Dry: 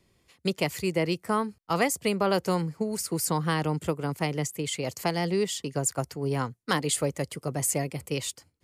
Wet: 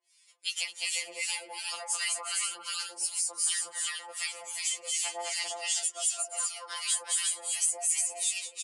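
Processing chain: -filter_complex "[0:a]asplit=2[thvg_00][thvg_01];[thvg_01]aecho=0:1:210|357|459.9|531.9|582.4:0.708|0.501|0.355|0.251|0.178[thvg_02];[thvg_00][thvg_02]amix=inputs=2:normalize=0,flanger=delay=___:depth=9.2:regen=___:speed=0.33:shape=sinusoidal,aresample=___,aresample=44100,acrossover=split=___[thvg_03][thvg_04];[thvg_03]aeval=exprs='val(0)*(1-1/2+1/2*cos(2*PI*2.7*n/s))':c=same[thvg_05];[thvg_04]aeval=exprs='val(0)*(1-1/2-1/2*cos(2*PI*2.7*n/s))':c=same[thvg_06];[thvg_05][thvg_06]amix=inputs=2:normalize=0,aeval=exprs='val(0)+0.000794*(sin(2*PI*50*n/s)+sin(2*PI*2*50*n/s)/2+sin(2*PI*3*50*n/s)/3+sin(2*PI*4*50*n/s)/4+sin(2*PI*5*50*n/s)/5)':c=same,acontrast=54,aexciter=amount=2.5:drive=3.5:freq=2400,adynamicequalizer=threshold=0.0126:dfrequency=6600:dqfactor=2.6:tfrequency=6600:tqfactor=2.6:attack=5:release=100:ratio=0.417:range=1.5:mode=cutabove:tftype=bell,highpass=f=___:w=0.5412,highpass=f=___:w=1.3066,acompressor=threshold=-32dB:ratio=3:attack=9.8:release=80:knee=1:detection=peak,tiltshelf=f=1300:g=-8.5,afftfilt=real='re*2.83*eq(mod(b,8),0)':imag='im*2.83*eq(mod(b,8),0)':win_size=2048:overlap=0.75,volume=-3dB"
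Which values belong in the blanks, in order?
2.7, 67, 22050, 1100, 580, 580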